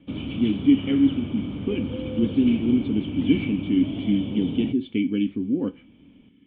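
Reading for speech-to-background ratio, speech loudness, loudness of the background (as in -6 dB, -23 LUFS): 7.0 dB, -24.0 LUFS, -31.0 LUFS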